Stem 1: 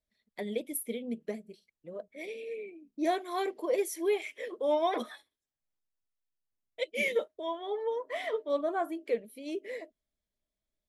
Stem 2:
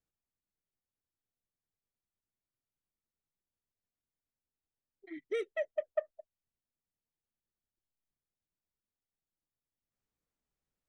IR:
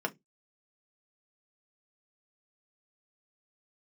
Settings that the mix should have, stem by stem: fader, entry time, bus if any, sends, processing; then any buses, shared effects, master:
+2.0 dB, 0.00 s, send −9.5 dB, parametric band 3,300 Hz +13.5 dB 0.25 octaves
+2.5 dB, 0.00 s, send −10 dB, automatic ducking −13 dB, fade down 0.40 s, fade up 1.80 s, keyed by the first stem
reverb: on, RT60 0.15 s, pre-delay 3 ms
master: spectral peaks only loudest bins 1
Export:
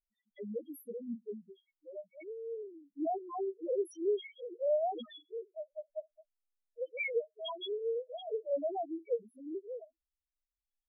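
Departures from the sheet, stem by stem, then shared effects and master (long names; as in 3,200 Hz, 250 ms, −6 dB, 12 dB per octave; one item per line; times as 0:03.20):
stem 1: send −9.5 dB → −17 dB
reverb return −7.0 dB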